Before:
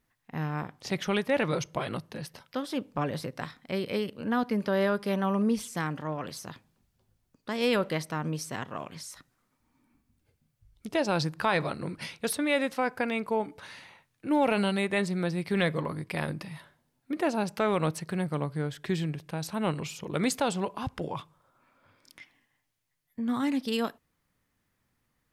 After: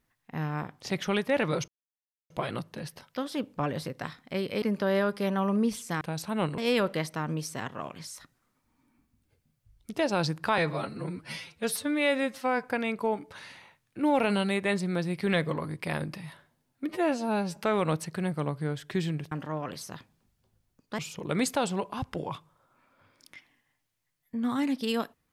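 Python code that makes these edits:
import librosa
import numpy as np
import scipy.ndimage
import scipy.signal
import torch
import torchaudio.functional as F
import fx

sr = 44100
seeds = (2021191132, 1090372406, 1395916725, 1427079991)

y = fx.edit(x, sr, fx.insert_silence(at_s=1.68, length_s=0.62),
    fx.cut(start_s=4.0, length_s=0.48),
    fx.swap(start_s=5.87, length_s=1.67, other_s=19.26, other_length_s=0.57),
    fx.stretch_span(start_s=11.54, length_s=1.37, factor=1.5),
    fx.stretch_span(start_s=17.18, length_s=0.33, factor=2.0), tone=tone)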